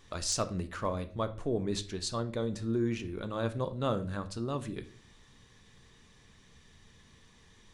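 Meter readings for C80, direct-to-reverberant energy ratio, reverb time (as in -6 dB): 19.0 dB, 9.0 dB, 0.45 s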